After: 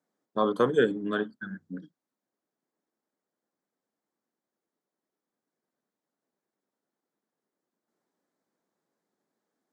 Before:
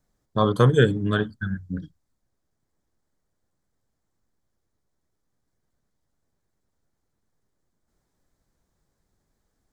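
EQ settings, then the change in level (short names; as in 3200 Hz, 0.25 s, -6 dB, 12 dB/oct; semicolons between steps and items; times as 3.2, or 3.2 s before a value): HPF 220 Hz 24 dB/oct; high shelf 2900 Hz -9 dB; -3.0 dB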